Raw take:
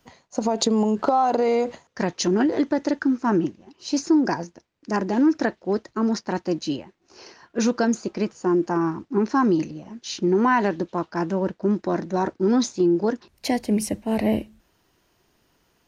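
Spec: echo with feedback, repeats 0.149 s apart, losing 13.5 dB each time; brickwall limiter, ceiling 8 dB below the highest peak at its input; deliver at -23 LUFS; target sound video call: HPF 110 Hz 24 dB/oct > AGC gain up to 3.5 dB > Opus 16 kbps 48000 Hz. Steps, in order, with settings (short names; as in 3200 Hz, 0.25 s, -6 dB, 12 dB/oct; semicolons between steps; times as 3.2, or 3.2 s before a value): limiter -15.5 dBFS; HPF 110 Hz 24 dB/oct; feedback echo 0.149 s, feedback 21%, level -13.5 dB; AGC gain up to 3.5 dB; gain +3 dB; Opus 16 kbps 48000 Hz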